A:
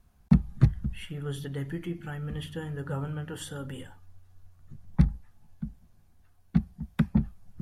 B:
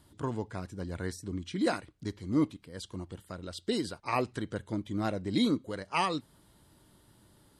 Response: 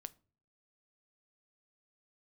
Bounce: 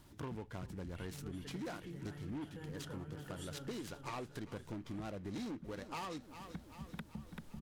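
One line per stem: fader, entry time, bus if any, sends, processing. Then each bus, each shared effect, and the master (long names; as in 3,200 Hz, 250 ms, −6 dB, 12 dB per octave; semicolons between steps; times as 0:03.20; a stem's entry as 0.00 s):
−7.5 dB, 0.00 s, no send, echo send −6.5 dB, downward compressor, threshold −33 dBFS, peak gain reduction 18.5 dB
0.0 dB, 0.00 s, no send, echo send −19.5 dB, soft clipping −27 dBFS, distortion −11 dB; short delay modulated by noise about 1,600 Hz, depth 0.037 ms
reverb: not used
echo: repeating echo 388 ms, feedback 59%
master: downward compressor 5 to 1, threshold −42 dBFS, peak gain reduction 13 dB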